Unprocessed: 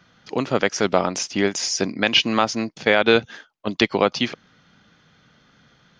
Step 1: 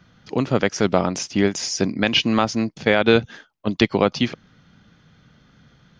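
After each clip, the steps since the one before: low shelf 230 Hz +11.5 dB; gain -2 dB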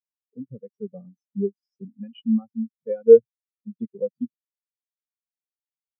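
notch comb 320 Hz; in parallel at -6 dB: sine folder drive 4 dB, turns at -3.5 dBFS; on the sum: spectral expander 4:1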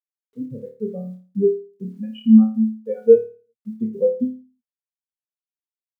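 AGC gain up to 4 dB; bit-crush 12-bit; on a send: flutter echo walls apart 4.7 m, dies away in 0.38 s; on the sum: gain +2 dB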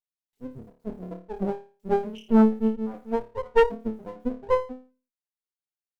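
three bands offset in time highs, lows, mids 40/480 ms, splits 330/1800 Hz; half-wave rectifier; added harmonics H 6 -16 dB, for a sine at -4 dBFS; gain -2 dB

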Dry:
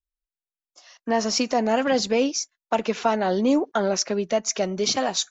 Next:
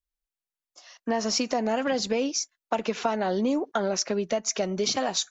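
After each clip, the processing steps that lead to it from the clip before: compressor, threshold -22 dBFS, peak gain reduction 6.5 dB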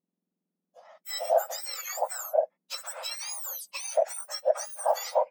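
spectrum mirrored in octaves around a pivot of 1900 Hz; dynamic EQ 660 Hz, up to +6 dB, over -36 dBFS, Q 1.5; gain -4 dB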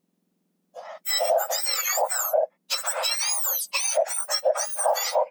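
in parallel at +0.5 dB: compressor, threshold -38 dBFS, peak gain reduction 19 dB; on the sum: limiter -20 dBFS, peak gain reduction 9.5 dB; gain +7 dB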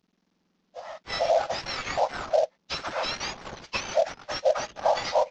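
CVSD 32 kbps

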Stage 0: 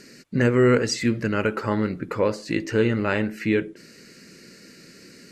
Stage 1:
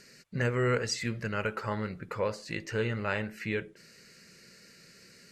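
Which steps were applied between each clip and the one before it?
bell 290 Hz -13 dB 0.77 oct; gain -6 dB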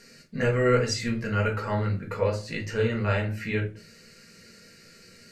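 shoebox room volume 140 m³, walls furnished, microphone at 1.7 m

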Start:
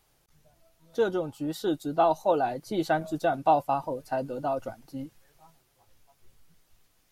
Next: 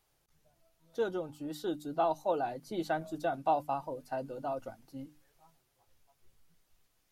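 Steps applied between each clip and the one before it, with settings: notches 50/100/150/200/250/300 Hz; gain -7 dB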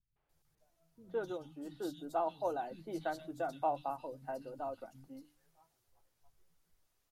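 vibrato 0.53 Hz 18 cents; three bands offset in time lows, mids, highs 0.16/0.29 s, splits 190/2900 Hz; gain -4.5 dB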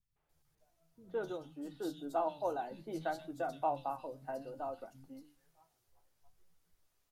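flange 0.61 Hz, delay 10 ms, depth 7.6 ms, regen +75%; gain +4.5 dB

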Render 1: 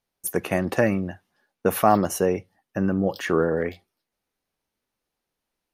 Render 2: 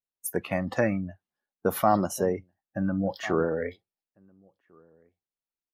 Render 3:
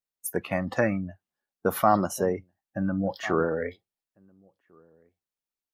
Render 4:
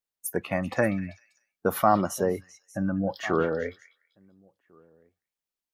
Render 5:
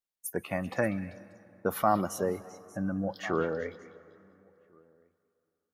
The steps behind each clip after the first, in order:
outdoor echo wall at 240 m, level -15 dB; spectral noise reduction 16 dB; gain -4 dB
dynamic EQ 1300 Hz, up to +4 dB, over -39 dBFS, Q 1.6
delay with a stepping band-pass 0.195 s, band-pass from 2900 Hz, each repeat 0.7 oct, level -10 dB
plate-style reverb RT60 3.1 s, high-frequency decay 0.6×, pre-delay 0.115 s, DRR 19 dB; gain -4.5 dB

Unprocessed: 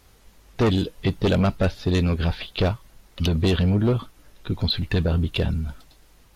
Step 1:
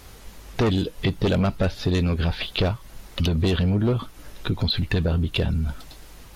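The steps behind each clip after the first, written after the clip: in parallel at +2 dB: limiter -20 dBFS, peak gain reduction 7 dB; on the sum: compressor 2:1, threshold -29 dBFS, peak gain reduction 9 dB; gain +3 dB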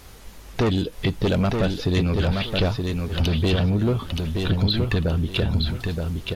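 feedback echo 0.923 s, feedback 25%, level -4.5 dB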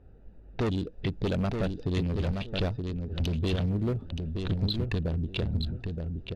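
Wiener smoothing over 41 samples; low-pass opened by the level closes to 2600 Hz, open at -17 dBFS; gain -7 dB

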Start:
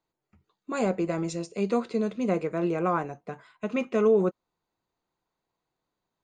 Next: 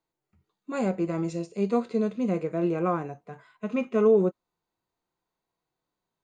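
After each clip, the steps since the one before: harmonic-percussive split percussive -10 dB; gain +1.5 dB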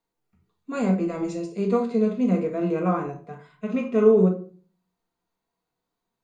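reverb RT60 0.40 s, pre-delay 4 ms, DRR 2 dB

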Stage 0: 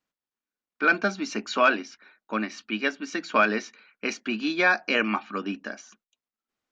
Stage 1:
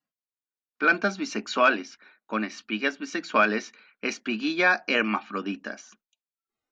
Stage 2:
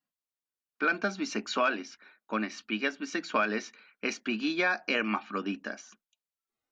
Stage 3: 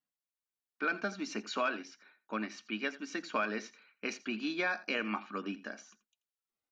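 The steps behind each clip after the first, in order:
spectral noise reduction 14 dB
compressor 2.5:1, threshold -23 dBFS, peak gain reduction 6 dB; gain -2 dB
echo 84 ms -17.5 dB; gain -5.5 dB

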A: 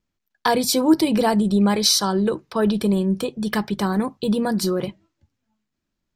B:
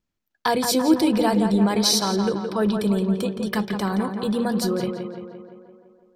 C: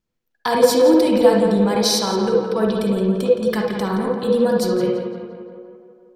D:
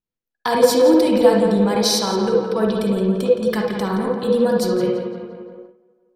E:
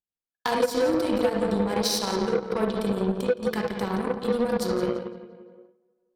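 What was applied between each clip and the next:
tape echo 0.17 s, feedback 67%, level -5.5 dB, low-pass 2800 Hz; gain -2.5 dB
on a send at -2 dB: bell 490 Hz +15 dB 0.23 oct + reverb RT60 0.35 s, pre-delay 47 ms
gate -38 dBFS, range -12 dB
compressor 6:1, threshold -16 dBFS, peak gain reduction 9 dB; added harmonics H 7 -21 dB, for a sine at -7.5 dBFS; gain -3.5 dB

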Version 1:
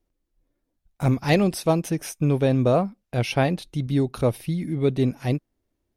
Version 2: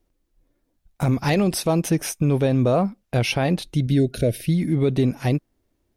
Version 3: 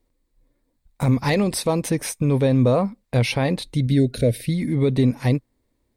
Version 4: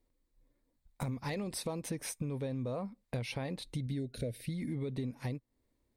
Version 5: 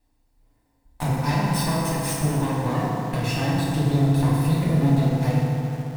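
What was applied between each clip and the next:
spectral gain 3.76–4.53, 690–1400 Hz -23 dB; limiter -17 dBFS, peak gain reduction 9.5 dB; gain +6 dB
ripple EQ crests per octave 0.98, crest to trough 6 dB
compressor, threshold -27 dBFS, peak gain reduction 13.5 dB; gain -7.5 dB
minimum comb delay 1.1 ms; FDN reverb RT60 3.2 s, high-frequency decay 0.45×, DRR -7 dB; in parallel at -8 dB: bit-crush 7-bit; on the sum: gain +5.5 dB

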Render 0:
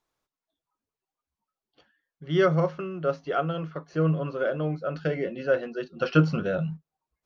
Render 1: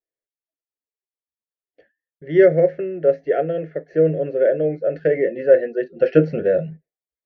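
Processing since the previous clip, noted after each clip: gate with hold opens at -45 dBFS; EQ curve 210 Hz 0 dB, 460 Hz +14 dB, 650 Hz +10 dB, 1100 Hz -25 dB, 1800 Hz +13 dB, 3000 Hz -7 dB, 6800 Hz -12 dB; gain -1 dB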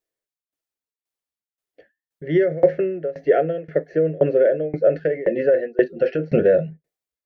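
limiter -11.5 dBFS, peak gain reduction 9.5 dB; tremolo saw down 1.9 Hz, depth 95%; gain +8 dB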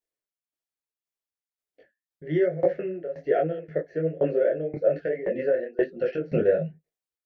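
detuned doubles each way 40 cents; gain -2.5 dB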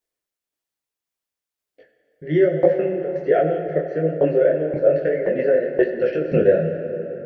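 plate-style reverb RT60 4 s, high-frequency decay 0.6×, DRR 6 dB; gain +5.5 dB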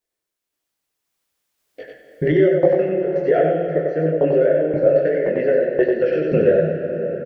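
recorder AGC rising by 8.1 dB/s; echo 95 ms -4 dB

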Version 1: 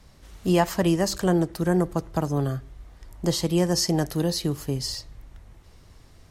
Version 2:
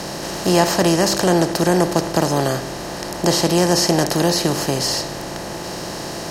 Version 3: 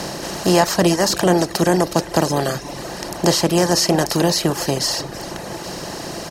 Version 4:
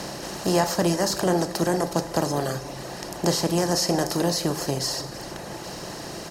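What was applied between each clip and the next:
per-bin compression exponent 0.4; low shelf 110 Hz -9.5 dB; gain +3.5 dB
echo 0.317 s -13.5 dB; reverb removal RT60 0.91 s; gain +1.5 dB
dynamic EQ 2700 Hz, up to -4 dB, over -34 dBFS, Q 1.3; reverb, pre-delay 3 ms, DRR 8.5 dB; gain -6.5 dB

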